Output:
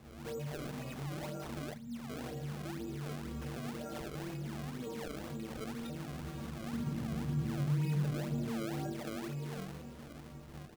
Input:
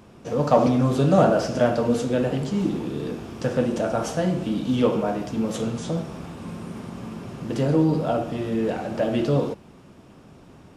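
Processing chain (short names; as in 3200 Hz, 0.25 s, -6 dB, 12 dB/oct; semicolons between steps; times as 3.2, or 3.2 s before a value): rattling part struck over -21 dBFS, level -17 dBFS; tone controls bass +5 dB, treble +4 dB; compressor 6:1, threshold -30 dBFS, peak gain reduction 18 dB; metallic resonator 69 Hz, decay 0.74 s, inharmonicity 0.03; frequency-shifting echo 0.248 s, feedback 52%, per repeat +46 Hz, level -14 dB; limiter -41 dBFS, peak gain reduction 10 dB; 1.73–2.1 spectral gain 270–3300 Hz -28 dB; decimation with a swept rate 28×, swing 160% 2 Hz; 6.73–8.92 bell 140 Hz +10 dB 1.3 oct; gain +7 dB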